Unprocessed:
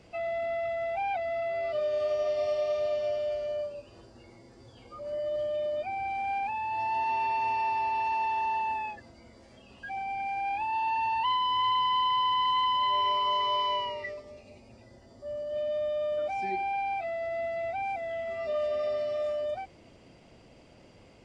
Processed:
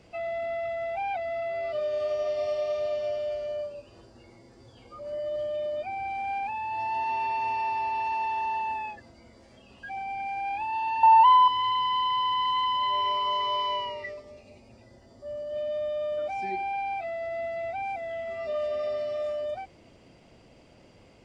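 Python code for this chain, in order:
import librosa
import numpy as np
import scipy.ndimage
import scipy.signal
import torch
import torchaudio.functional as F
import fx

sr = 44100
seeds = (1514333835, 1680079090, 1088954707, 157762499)

y = fx.peak_eq(x, sr, hz=850.0, db=14.0, octaves=0.98, at=(11.03, 11.48))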